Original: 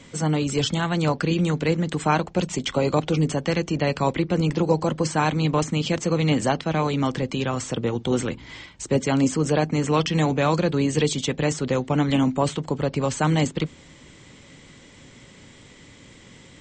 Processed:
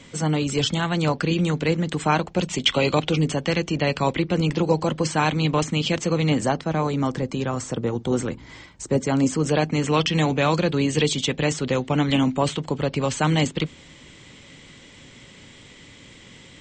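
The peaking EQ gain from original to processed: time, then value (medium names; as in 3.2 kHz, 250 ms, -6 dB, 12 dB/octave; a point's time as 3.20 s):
peaking EQ 3 kHz 1.2 oct
2.42 s +2.5 dB
2.79 s +14.5 dB
3.22 s +4.5 dB
6.01 s +4.5 dB
6.63 s -6 dB
9.04 s -6 dB
9.61 s +5 dB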